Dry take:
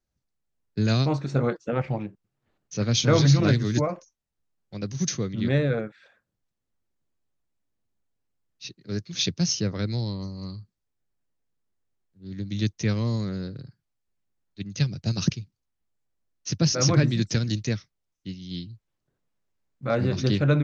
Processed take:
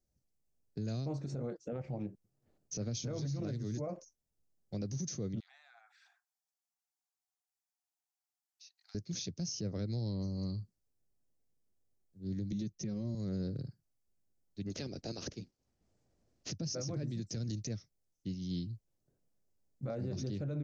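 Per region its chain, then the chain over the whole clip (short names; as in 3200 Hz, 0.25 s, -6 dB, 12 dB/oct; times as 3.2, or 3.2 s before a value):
5.4–8.95 Chebyshev high-pass 720 Hz, order 8 + compressor 5:1, threshold -51 dBFS
12.52–13.15 low shelf 340 Hz +7.5 dB + comb 5.4 ms, depth 80% + three-band expander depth 40%
14.66–16.5 spectral limiter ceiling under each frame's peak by 22 dB + air absorption 100 m
whole clip: compressor 6:1, threshold -32 dBFS; band shelf 1900 Hz -10 dB 2.4 oct; limiter -30.5 dBFS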